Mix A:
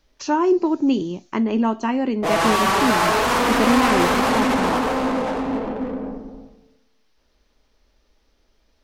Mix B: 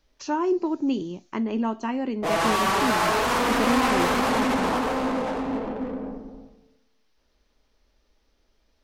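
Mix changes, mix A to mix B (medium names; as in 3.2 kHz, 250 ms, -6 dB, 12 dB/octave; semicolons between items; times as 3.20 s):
speech -6.0 dB; background -4.0 dB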